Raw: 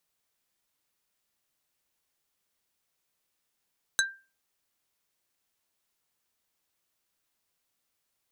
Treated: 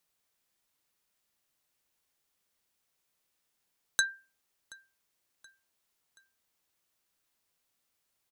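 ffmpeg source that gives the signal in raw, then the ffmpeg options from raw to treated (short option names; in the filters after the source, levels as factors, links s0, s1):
-f lavfi -i "aevalsrc='0.1*pow(10,-3*t/0.32)*sin(2*PI*1580*t)+0.0891*pow(10,-3*t/0.107)*sin(2*PI*3950*t)+0.0794*pow(10,-3*t/0.061)*sin(2*PI*6320*t)+0.0708*pow(10,-3*t/0.046)*sin(2*PI*7900*t)+0.0631*pow(10,-3*t/0.034)*sin(2*PI*10270*t)':d=0.45:s=44100"
-af "aecho=1:1:727|1454|2181:0.0668|0.0314|0.0148"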